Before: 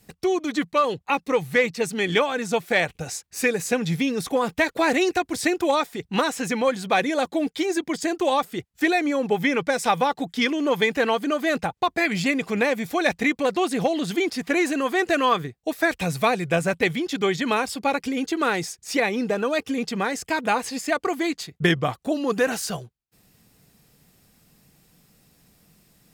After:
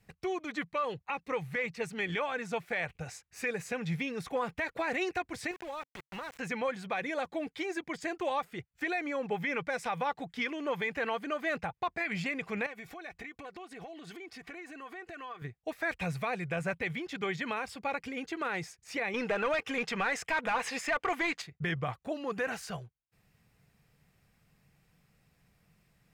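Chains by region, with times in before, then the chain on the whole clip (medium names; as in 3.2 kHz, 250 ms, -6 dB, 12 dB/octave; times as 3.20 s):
5.51–6.39 s: small samples zeroed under -26.5 dBFS + compression 3:1, threshold -31 dBFS
12.66–15.42 s: comb 2.7 ms, depth 50% + compression 16:1, threshold -31 dBFS
19.14–21.42 s: band-stop 4.5 kHz, Q 13 + overdrive pedal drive 17 dB, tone 6.5 kHz, clips at -9 dBFS
whole clip: FFT filter 140 Hz 0 dB, 270 Hz -9 dB, 490 Hz -4 dB, 2.3 kHz +1 dB, 3.5 kHz -7 dB, 13 kHz -13 dB; peak limiter -17 dBFS; trim -6 dB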